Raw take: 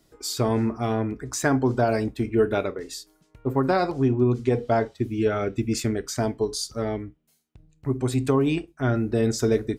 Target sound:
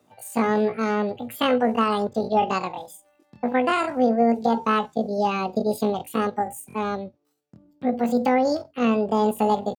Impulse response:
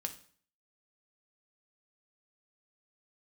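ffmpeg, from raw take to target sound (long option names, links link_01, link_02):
-af "highpass=frequency=61:width=0.5412,highpass=frequency=61:width=1.3066,bass=frequency=250:gain=5,treble=frequency=4000:gain=-9,asetrate=83250,aresample=44100,atempo=0.529732,volume=-1dB"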